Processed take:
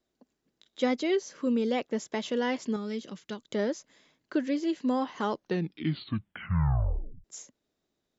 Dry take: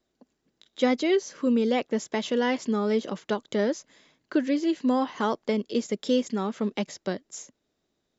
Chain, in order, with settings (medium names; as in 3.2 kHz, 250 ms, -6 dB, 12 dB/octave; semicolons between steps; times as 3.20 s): 2.76–3.50 s: peaking EQ 710 Hz -11.5 dB 2.3 oct; 5.21 s: tape stop 2.03 s; trim -4 dB